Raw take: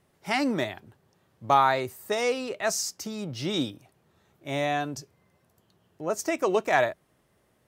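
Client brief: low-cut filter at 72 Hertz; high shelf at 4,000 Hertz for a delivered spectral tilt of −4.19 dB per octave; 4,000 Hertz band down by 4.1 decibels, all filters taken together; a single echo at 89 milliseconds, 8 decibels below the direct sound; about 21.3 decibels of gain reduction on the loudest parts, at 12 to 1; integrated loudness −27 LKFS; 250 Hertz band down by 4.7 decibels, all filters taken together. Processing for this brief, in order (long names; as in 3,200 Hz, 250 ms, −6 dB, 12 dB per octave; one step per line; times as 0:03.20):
high-pass filter 72 Hz
parametric band 250 Hz −6 dB
high-shelf EQ 4,000 Hz +3.5 dB
parametric band 4,000 Hz −7.5 dB
downward compressor 12 to 1, threshold −38 dBFS
single-tap delay 89 ms −8 dB
level +15.5 dB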